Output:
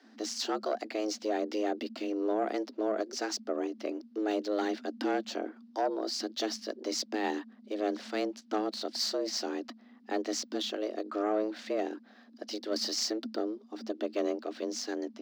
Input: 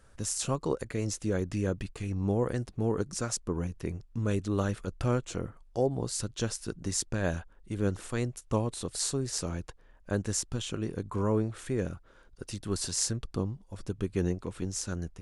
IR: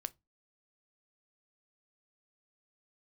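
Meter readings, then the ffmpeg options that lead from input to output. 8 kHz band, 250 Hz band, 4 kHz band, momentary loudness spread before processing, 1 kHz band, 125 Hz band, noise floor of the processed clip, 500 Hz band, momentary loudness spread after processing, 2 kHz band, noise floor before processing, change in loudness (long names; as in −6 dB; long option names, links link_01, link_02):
−6.5 dB, −1.0 dB, +4.0 dB, 8 LU, +4.5 dB, below −25 dB, −58 dBFS, +1.0 dB, 7 LU, +0.5 dB, −58 dBFS, −1.0 dB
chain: -filter_complex "[0:a]highshelf=frequency=6600:width_type=q:width=3:gain=-14,acrossover=split=370|2500[link_01][link_02][link_03];[link_03]acrusher=bits=5:mode=log:mix=0:aa=0.000001[link_04];[link_01][link_02][link_04]amix=inputs=3:normalize=0,asoftclip=type=tanh:threshold=-22dB,afreqshift=210"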